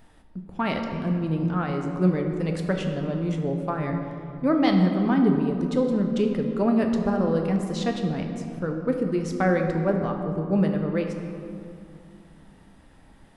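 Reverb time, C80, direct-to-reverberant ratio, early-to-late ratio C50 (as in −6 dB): 2.4 s, 6.0 dB, 3.0 dB, 5.0 dB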